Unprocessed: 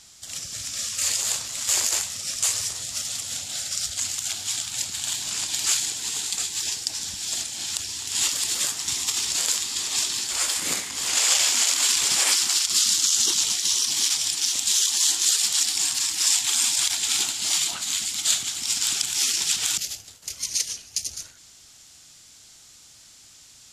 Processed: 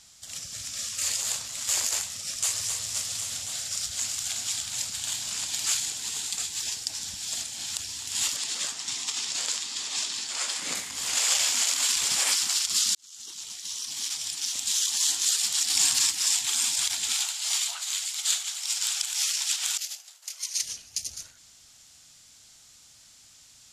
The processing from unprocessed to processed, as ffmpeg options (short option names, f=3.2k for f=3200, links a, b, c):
-filter_complex "[0:a]asplit=2[a][b];[b]afade=t=in:st=2.3:d=0.01,afade=t=out:st=2.71:d=0.01,aecho=0:1:260|520|780|1040|1300|1560|1820|2080|2340|2600|2860|3120:0.530884|0.424708|0.339766|0.271813|0.21745|0.17396|0.139168|0.111335|0.0890676|0.0712541|0.0570033|0.0456026[c];[a][c]amix=inputs=2:normalize=0,asplit=2[d][e];[e]afade=t=in:st=3.56:d=0.01,afade=t=out:st=4.14:d=0.01,aecho=0:1:370|740|1110|1480|1850|2220|2590|2960|3330|3700|4070|4440:0.501187|0.40095|0.32076|0.256608|0.205286|0.164229|0.131383|0.105107|0.0840853|0.0672682|0.0538146|0.0430517[f];[d][f]amix=inputs=2:normalize=0,asettb=1/sr,asplit=3[g][h][i];[g]atrim=end=8.364[j];[h]atrim=start=8.36:end=10.75,asetpts=PTS-STARTPTS,afade=t=in:d=0.004:c=qsin,afade=t=out:st=2.386:d=0.004:c=qsin,highpass=170,lowpass=7.7k[k];[i]atrim=start=10.746[l];[j][k]acrossfade=d=0.004:c1=hsin:c2=qsin[m];[m][l]acrossfade=d=0.004:c1=qsin:c2=hsin,asettb=1/sr,asplit=3[n][o][p];[n]atrim=end=17.144[q];[o]atrim=start=17.14:end=20.63,asetpts=PTS-STARTPTS,afade=t=in:d=0.004:c=qsin,afade=t=out:st=3.486:d=0.004:c=qsin,highpass=f=680:w=0.5412,highpass=f=680:w=1.3066[r];[p]atrim=start=20.626[s];[q][r]acrossfade=d=0.004:c1=hsin:c2=qsin[t];[t][s]acrossfade=d=0.004:c1=qsin:c2=hsin,asplit=4[u][v][w][x];[u]atrim=end=12.95,asetpts=PTS-STARTPTS,afade=t=out:st=12.946:d=0.004:c=hsin[y];[v]atrim=start=12.95:end=15.702,asetpts=PTS-STARTPTS,afade=t=in:d=2.04[z];[w]atrim=start=15.698:end=16.112,asetpts=PTS-STARTPTS,volume=5.5dB[aa];[x]atrim=start=16.108[ab];[y][z]concat=n=2:v=0:a=1[ac];[ac][aa]acrossfade=d=0.004:c1=hsin:c2=hsin[ad];[ad][ab]acrossfade=d=0.004:c1=hsin:c2=hsin,equalizer=f=360:t=o:w=0.45:g=-5.5,volume=-4dB"